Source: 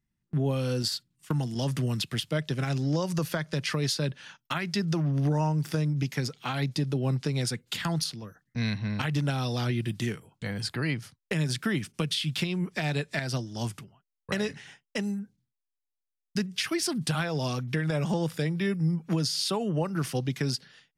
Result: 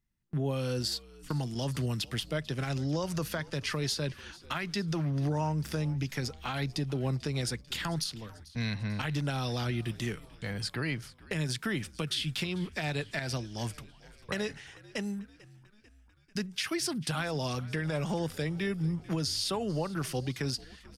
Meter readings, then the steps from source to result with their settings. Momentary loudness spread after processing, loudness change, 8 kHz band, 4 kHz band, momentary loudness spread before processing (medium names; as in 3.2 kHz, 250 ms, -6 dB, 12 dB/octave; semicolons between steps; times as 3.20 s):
7 LU, -4.0 dB, -2.5 dB, -2.5 dB, 7 LU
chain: peaking EQ 160 Hz -4.5 dB 1.8 oct; in parallel at -1.5 dB: peak limiter -24 dBFS, peak gain reduction 10 dB; on the sum: bass shelf 92 Hz +5 dB; frequency-shifting echo 443 ms, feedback 60%, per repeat -70 Hz, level -20.5 dB; trim -6.5 dB